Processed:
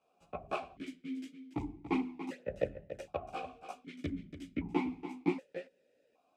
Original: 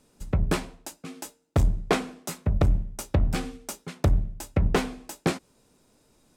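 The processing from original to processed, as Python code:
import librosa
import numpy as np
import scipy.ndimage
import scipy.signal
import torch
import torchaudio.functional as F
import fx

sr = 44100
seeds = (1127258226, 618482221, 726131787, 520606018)

y = fx.chorus_voices(x, sr, voices=2, hz=1.0, base_ms=14, depth_ms=3.0, mix_pct=60)
y = y + 10.0 ** (-11.0 / 20.0) * np.pad(y, (int(286 * sr / 1000.0), 0))[:len(y)]
y = fx.vowel_held(y, sr, hz=1.3)
y = y * 10.0 ** (6.5 / 20.0)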